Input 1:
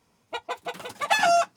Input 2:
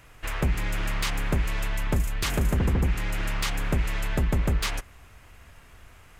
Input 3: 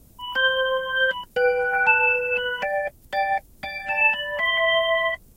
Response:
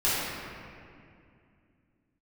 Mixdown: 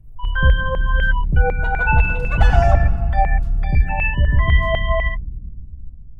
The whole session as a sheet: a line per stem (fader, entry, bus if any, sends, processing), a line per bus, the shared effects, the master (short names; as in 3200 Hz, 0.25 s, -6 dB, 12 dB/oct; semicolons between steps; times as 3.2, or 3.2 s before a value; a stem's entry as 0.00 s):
-3.0 dB, 1.30 s, send -19 dB, dry
-6.5 dB, 0.00 s, send -15.5 dB, reverb removal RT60 1.7 s; EQ curve 140 Hz 0 dB, 650 Hz -12 dB, 1600 Hz -26 dB, 12000 Hz -8 dB
-2.5 dB, 0.00 s, no send, spectral gate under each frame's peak -25 dB strong; LFO high-pass saw down 4 Hz 650–2300 Hz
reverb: on, RT60 2.4 s, pre-delay 3 ms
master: tilt -4 dB/oct